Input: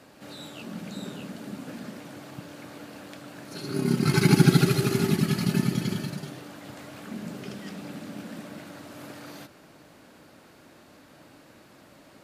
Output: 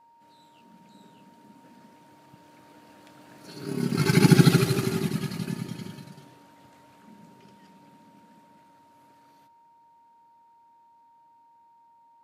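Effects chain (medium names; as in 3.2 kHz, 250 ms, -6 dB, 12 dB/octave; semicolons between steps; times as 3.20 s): Doppler pass-by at 4.40 s, 7 m/s, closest 2.8 m; whistle 930 Hz -57 dBFS; trim +1.5 dB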